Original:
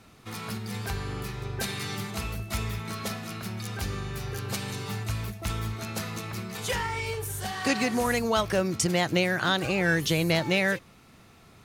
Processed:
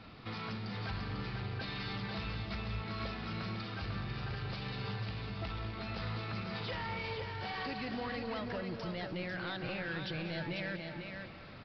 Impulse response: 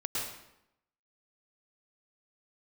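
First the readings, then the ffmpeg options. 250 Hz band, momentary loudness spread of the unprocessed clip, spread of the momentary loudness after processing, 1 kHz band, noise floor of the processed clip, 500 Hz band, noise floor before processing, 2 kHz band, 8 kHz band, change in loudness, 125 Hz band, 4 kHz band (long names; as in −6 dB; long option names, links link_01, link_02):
−10.5 dB, 11 LU, 2 LU, −9.5 dB, −50 dBFS, −12.5 dB, −54 dBFS, −11.0 dB, below −30 dB, −10.5 dB, −7.5 dB, −10.0 dB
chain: -filter_complex "[0:a]bandreject=frequency=390:width=12,alimiter=limit=-20.5dB:level=0:latency=1:release=496,acompressor=threshold=-39dB:ratio=2.5,asoftclip=type=tanh:threshold=-37.5dB,aecho=1:1:496:0.531,asplit=2[link_01][link_02];[1:a]atrim=start_sample=2205,asetrate=24696,aresample=44100[link_03];[link_02][link_03]afir=irnorm=-1:irlink=0,volume=-16dB[link_04];[link_01][link_04]amix=inputs=2:normalize=0,aresample=11025,aresample=44100,volume=1dB"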